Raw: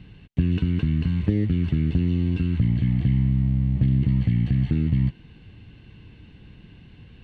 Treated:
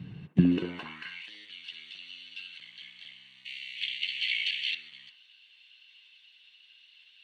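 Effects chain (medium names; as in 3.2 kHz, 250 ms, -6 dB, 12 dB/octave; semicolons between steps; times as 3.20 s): coarse spectral quantiser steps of 15 dB; 3.45–4.75 s: resonant high shelf 1.6 kHz +12 dB, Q 3; on a send: feedback echo behind a band-pass 65 ms, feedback 34%, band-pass 760 Hz, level -3.5 dB; on the sum: high-pass sweep 140 Hz -> 3.3 kHz, 0.26–1.30 s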